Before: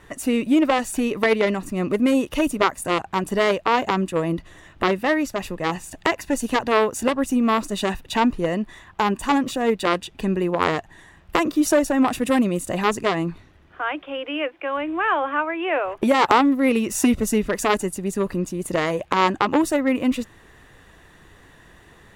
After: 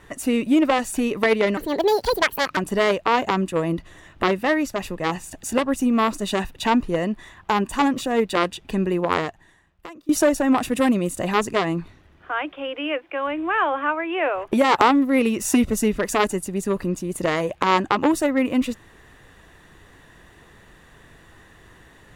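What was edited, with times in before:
0:01.57–0:03.17: play speed 160%
0:06.03–0:06.93: remove
0:10.57–0:11.59: fade out quadratic, to −22.5 dB

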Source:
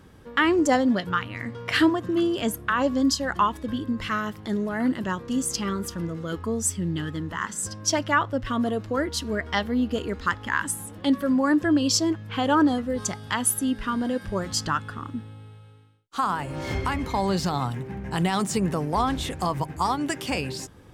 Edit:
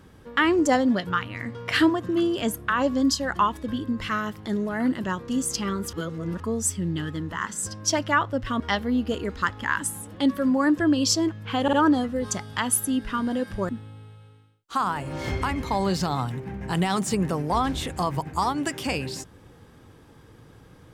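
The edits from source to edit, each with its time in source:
0:05.93–0:06.40: reverse
0:08.60–0:09.44: remove
0:12.47: stutter 0.05 s, 3 plays
0:14.43–0:15.12: remove

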